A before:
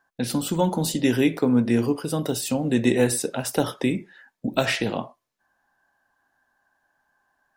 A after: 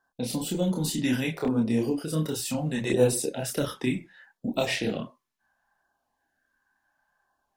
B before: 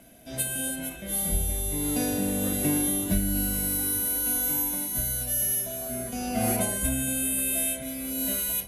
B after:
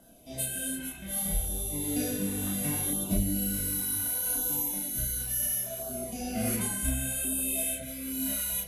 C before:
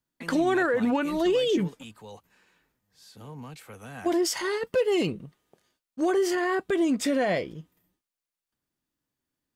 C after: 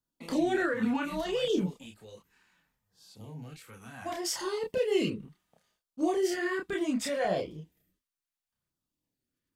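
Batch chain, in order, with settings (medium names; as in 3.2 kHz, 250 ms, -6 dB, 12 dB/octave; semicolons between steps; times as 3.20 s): LFO notch saw down 0.69 Hz 250–2400 Hz; chorus voices 4, 1.2 Hz, delay 29 ms, depth 3.1 ms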